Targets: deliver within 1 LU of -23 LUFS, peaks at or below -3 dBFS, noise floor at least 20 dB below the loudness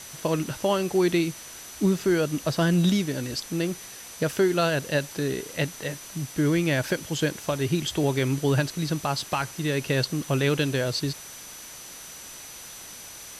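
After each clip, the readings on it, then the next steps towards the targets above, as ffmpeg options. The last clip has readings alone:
steady tone 6000 Hz; tone level -45 dBFS; noise floor -42 dBFS; noise floor target -46 dBFS; loudness -26.0 LUFS; peak -12.5 dBFS; loudness target -23.0 LUFS
-> -af "bandreject=f=6k:w=30"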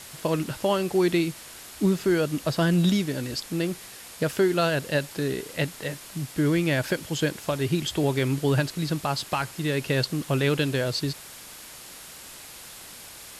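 steady tone none; noise floor -44 dBFS; noise floor target -46 dBFS
-> -af "afftdn=nr=6:nf=-44"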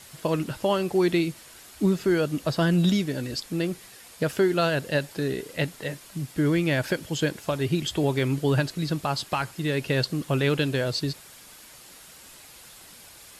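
noise floor -49 dBFS; loudness -26.0 LUFS; peak -12.5 dBFS; loudness target -23.0 LUFS
-> -af "volume=3dB"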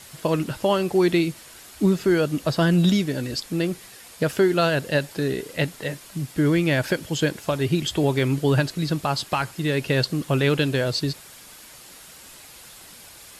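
loudness -23.0 LUFS; peak -9.5 dBFS; noise floor -46 dBFS

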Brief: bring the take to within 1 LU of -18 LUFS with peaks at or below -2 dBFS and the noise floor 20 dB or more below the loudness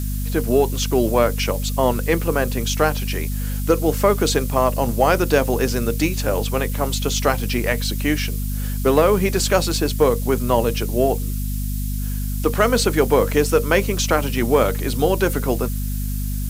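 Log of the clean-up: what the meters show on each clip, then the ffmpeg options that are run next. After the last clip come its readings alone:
hum 50 Hz; harmonics up to 250 Hz; hum level -21 dBFS; noise floor -24 dBFS; noise floor target -40 dBFS; loudness -20.0 LUFS; peak -2.0 dBFS; loudness target -18.0 LUFS
-> -af "bandreject=f=50:t=h:w=6,bandreject=f=100:t=h:w=6,bandreject=f=150:t=h:w=6,bandreject=f=200:t=h:w=6,bandreject=f=250:t=h:w=6"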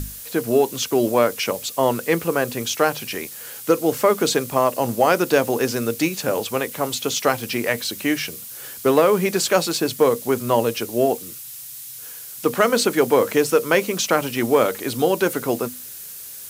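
hum none; noise floor -37 dBFS; noise floor target -41 dBFS
-> -af "afftdn=nr=6:nf=-37"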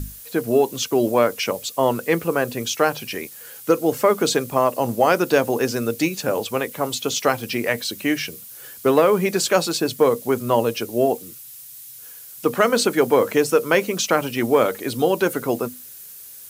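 noise floor -40 dBFS; noise floor target -41 dBFS
-> -af "afftdn=nr=6:nf=-40"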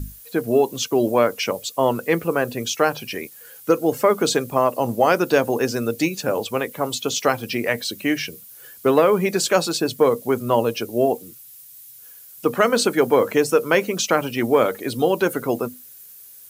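noise floor -44 dBFS; loudness -20.5 LUFS; peak -3.0 dBFS; loudness target -18.0 LUFS
-> -af "volume=2.5dB,alimiter=limit=-2dB:level=0:latency=1"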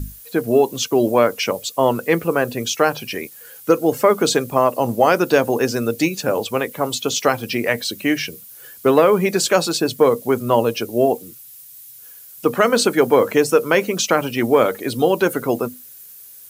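loudness -18.5 LUFS; peak -2.0 dBFS; noise floor -41 dBFS

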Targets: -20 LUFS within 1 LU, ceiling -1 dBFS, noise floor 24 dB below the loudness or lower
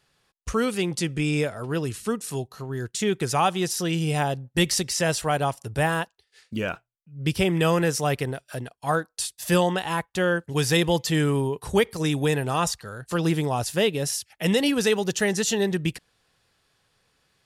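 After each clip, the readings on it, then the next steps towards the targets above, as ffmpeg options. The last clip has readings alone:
loudness -25.0 LUFS; peak -8.5 dBFS; loudness target -20.0 LUFS
-> -af "volume=5dB"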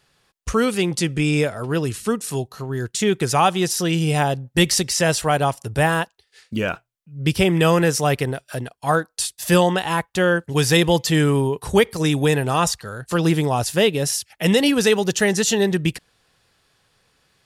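loudness -20.0 LUFS; peak -3.5 dBFS; noise floor -68 dBFS

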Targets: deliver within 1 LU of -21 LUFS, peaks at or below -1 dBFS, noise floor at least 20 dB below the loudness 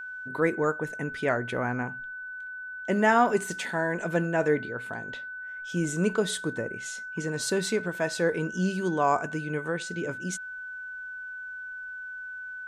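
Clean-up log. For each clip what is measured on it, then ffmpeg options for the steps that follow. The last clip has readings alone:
steady tone 1500 Hz; tone level -36 dBFS; loudness -29.5 LUFS; peak -10.0 dBFS; loudness target -21.0 LUFS
-> -af "bandreject=f=1.5k:w=30"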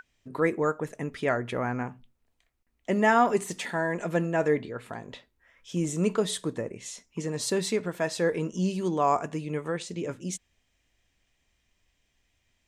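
steady tone none; loudness -28.5 LUFS; peak -10.5 dBFS; loudness target -21.0 LUFS
-> -af "volume=7.5dB"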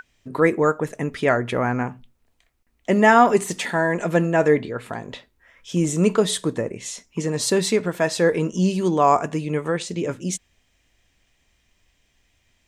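loudness -21.0 LUFS; peak -3.0 dBFS; noise floor -67 dBFS

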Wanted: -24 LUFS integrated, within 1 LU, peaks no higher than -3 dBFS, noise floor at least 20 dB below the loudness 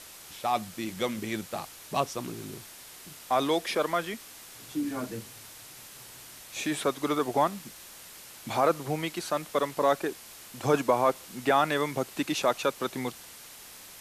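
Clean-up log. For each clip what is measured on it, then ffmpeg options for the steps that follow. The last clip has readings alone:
noise floor -48 dBFS; noise floor target -50 dBFS; loudness -29.5 LUFS; peak -11.5 dBFS; loudness target -24.0 LUFS
-> -af "afftdn=nr=6:nf=-48"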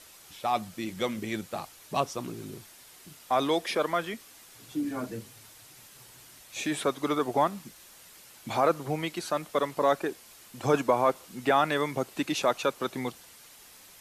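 noise floor -53 dBFS; loudness -29.5 LUFS; peak -12.0 dBFS; loudness target -24.0 LUFS
-> -af "volume=5.5dB"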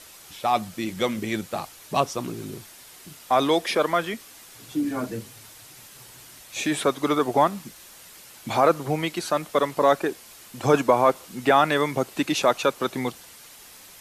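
loudness -24.0 LUFS; peak -6.5 dBFS; noise floor -47 dBFS

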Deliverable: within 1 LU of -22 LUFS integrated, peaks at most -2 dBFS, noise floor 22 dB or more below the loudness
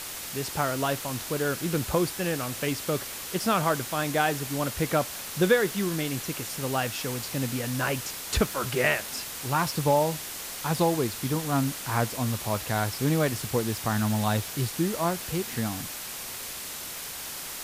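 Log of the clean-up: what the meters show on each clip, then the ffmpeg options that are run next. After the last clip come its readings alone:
noise floor -38 dBFS; noise floor target -50 dBFS; loudness -28.0 LUFS; peak -9.0 dBFS; loudness target -22.0 LUFS
-> -af "afftdn=nr=12:nf=-38"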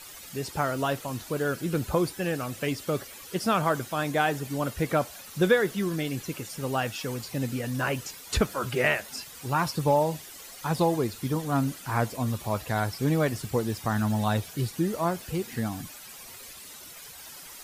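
noise floor -45 dBFS; noise floor target -51 dBFS
-> -af "afftdn=nr=6:nf=-45"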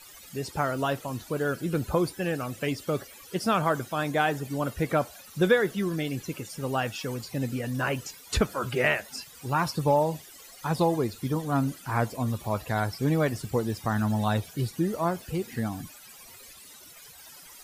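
noise floor -49 dBFS; noise floor target -51 dBFS
-> -af "afftdn=nr=6:nf=-49"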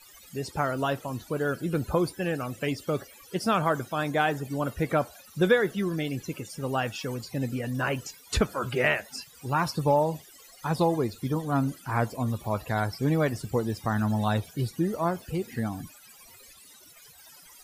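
noise floor -52 dBFS; loudness -28.5 LUFS; peak -9.0 dBFS; loudness target -22.0 LUFS
-> -af "volume=6.5dB"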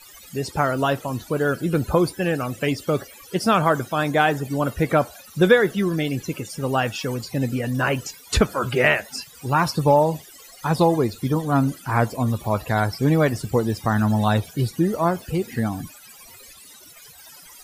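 loudness -22.0 LUFS; peak -2.5 dBFS; noise floor -46 dBFS

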